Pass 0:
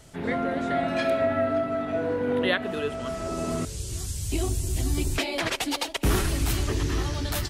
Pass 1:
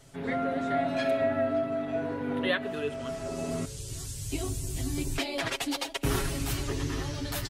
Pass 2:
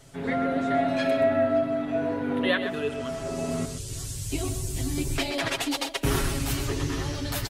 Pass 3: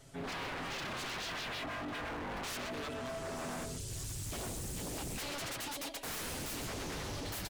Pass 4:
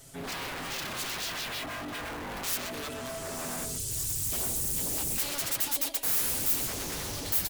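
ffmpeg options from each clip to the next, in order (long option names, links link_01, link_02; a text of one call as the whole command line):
ffmpeg -i in.wav -af "aecho=1:1:7.3:0.65,volume=-5.5dB" out.wav
ffmpeg -i in.wav -af "aecho=1:1:126:0.335,volume=3dB" out.wav
ffmpeg -i in.wav -af "aeval=exprs='0.0316*(abs(mod(val(0)/0.0316+3,4)-2)-1)':channel_layout=same,volume=-5.5dB" out.wav
ffmpeg -i in.wav -af "aemphasis=mode=production:type=50fm,volume=2.5dB" out.wav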